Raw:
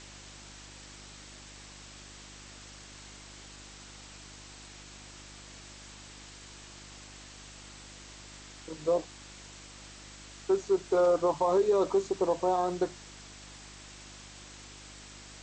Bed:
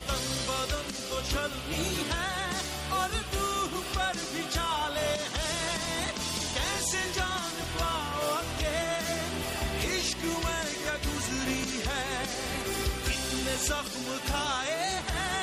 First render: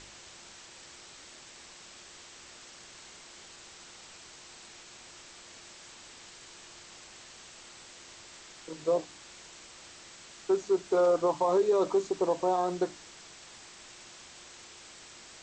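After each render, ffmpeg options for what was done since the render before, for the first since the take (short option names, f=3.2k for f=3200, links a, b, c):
-af "bandreject=f=50:t=h:w=4,bandreject=f=100:t=h:w=4,bandreject=f=150:t=h:w=4,bandreject=f=200:t=h:w=4,bandreject=f=250:t=h:w=4,bandreject=f=300:t=h:w=4"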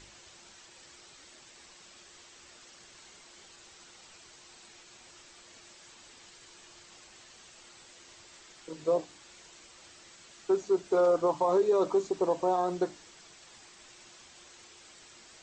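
-af "afftdn=nr=6:nf=-51"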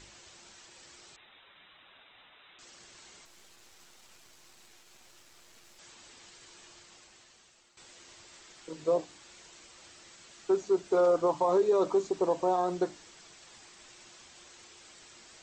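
-filter_complex "[0:a]asettb=1/sr,asplit=3[a][b][c];[a]atrim=end=1.164[d];[b]atrim=start=1.16:end=2.59,asetpts=PTS-STARTPTS,afade=t=in:d=0.004:c=qsin,afade=t=out:st=1.426:d=0.004:c=qsin,lowpass=f=3.4k:t=q:w=0.5098,lowpass=f=3.4k:t=q:w=0.6013,lowpass=f=3.4k:t=q:w=0.9,lowpass=f=3.4k:t=q:w=2.563,afreqshift=-4000[e];[c]atrim=start=2.586[f];[d][e]acrossfade=d=0.004:c1=hsin:c2=qsin[g];[g][f]acrossfade=d=0.004:c1=qsin:c2=hsin,asettb=1/sr,asplit=3[h][i][j];[h]atrim=end=3.254[k];[i]atrim=start=3.25:end=5.79,asetpts=PTS-STARTPTS,afade=t=in:d=0.004:c=qsin,afade=t=out:st=2.536:d=0.004:c=qsin,aeval=exprs='max(val(0),0)':c=same[l];[j]atrim=start=5.786[m];[k][l]acrossfade=d=0.004:c1=hsin:c2=qsin[n];[n][m]acrossfade=d=0.004:c1=qsin:c2=hsin,asplit=2[o][p];[o]atrim=end=7.77,asetpts=PTS-STARTPTS,afade=t=out:st=6.66:d=1.11:silence=0.211349[q];[p]atrim=start=7.77,asetpts=PTS-STARTPTS,afade=t=in:d=0.004:c=hsin:silence=0.211349[r];[q][r]concat=n=2:v=0:a=1"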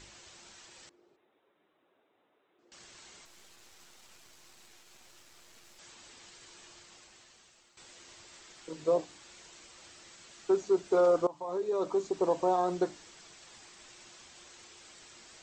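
-filter_complex "[0:a]asettb=1/sr,asplit=3[a][b][c];[a]atrim=end=0.894[d];[b]atrim=start=0.89:end=2.72,asetpts=PTS-STARTPTS,afade=t=in:d=0.004:c=qsin,afade=t=out:st=1.826:d=0.004:c=qsin,bandpass=f=370:t=q:w=2[e];[c]atrim=start=2.716[f];[d][e]acrossfade=d=0.004:c1=hsin:c2=qsin[g];[g][f]acrossfade=d=0.004:c1=qsin:c2=hsin,asplit=2[h][i];[h]atrim=end=11.27,asetpts=PTS-STARTPTS,afade=t=out:st=11.266:d=0.004:c=hsin:silence=0.112202[j];[i]atrim=start=11.27,asetpts=PTS-STARTPTS,afade=t=in:d=1.03:silence=0.112202[k];[j][k]concat=n=2:v=0:a=1"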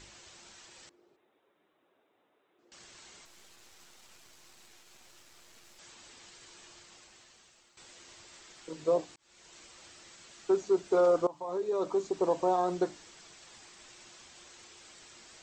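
-filter_complex "[0:a]asplit=2[a][b];[a]atrim=end=9.16,asetpts=PTS-STARTPTS,afade=t=out:st=9.156:d=0.004:c=hsin[c];[b]atrim=start=9.16,asetpts=PTS-STARTPTS,afade=t=in:d=0.42[d];[c][d]concat=n=2:v=0:a=1"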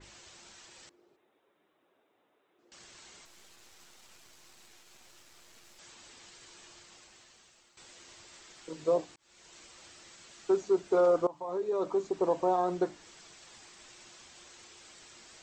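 -af "adynamicequalizer=threshold=0.00282:dfrequency=3000:dqfactor=0.7:tfrequency=3000:tqfactor=0.7:attack=5:release=100:ratio=0.375:range=2.5:mode=cutabove:tftype=highshelf"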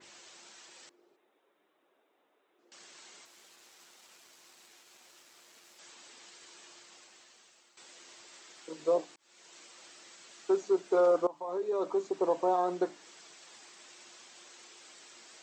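-af "highpass=260"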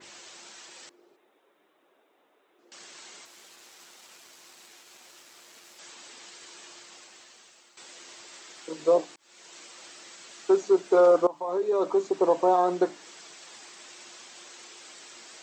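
-af "volume=6.5dB"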